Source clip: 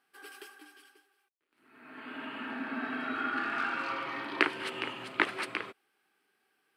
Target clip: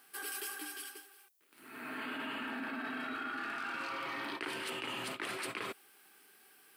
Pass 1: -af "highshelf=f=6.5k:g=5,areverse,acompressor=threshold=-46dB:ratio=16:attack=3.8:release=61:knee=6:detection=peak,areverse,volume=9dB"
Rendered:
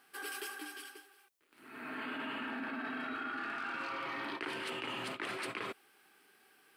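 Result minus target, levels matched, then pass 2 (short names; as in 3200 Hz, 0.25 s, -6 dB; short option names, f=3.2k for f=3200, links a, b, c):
8000 Hz band -5.0 dB
-af "highshelf=f=6.5k:g=16,areverse,acompressor=threshold=-46dB:ratio=16:attack=3.8:release=61:knee=6:detection=peak,areverse,volume=9dB"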